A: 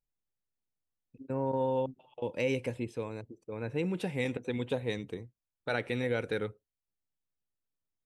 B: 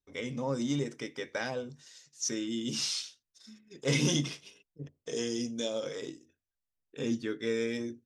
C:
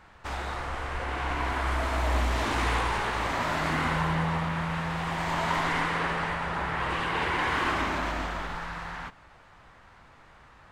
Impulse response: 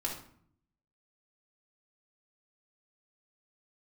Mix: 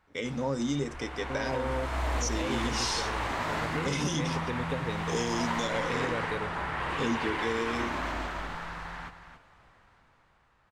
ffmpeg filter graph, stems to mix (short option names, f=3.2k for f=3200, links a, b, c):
-filter_complex "[0:a]volume=-2dB[a];[1:a]agate=range=-17dB:threshold=-50dB:ratio=16:detection=peak,volume=3dB[b];[2:a]dynaudnorm=f=210:g=13:m=12dB,volume=-14.5dB,asplit=2[c][d];[d]volume=-10.5dB,aecho=0:1:278:1[e];[a][b][c][e]amix=inputs=4:normalize=0,alimiter=limit=-19.5dB:level=0:latency=1:release=230"